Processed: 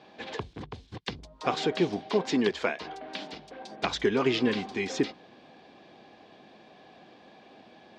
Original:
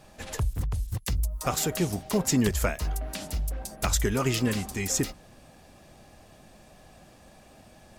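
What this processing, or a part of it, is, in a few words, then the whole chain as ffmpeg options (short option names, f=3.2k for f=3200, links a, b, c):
phone earpiece: -filter_complex "[0:a]asettb=1/sr,asplit=3[a][b][c];[a]atrim=end=2.094[d];[b]atrim=start=2.09:end=3.7,asetpts=PTS-STARTPTS,afade=t=in:d=0.004:c=qsin,afade=t=out:st=1.606:d=0.004:c=qsin,highpass=f=250:p=1[e];[c]atrim=start=3.696[f];[d][e]acrossfade=d=0.004:c1=hsin:c2=qsin[g];[g][f]acrossfade=d=0.004:c1=qsin:c2=hsin,highpass=340,equalizer=f=610:t=q:w=4:g=-7,equalizer=f=890:t=q:w=4:g=-4,equalizer=f=1.3k:t=q:w=4:g=-10,equalizer=f=1.9k:t=q:w=4:g=-6,equalizer=f=2.7k:t=q:w=4:g=-6,lowpass=f=3.6k:w=0.5412,lowpass=f=3.6k:w=1.3066,equalizer=f=550:w=6.3:g=-3.5,volume=7.5dB"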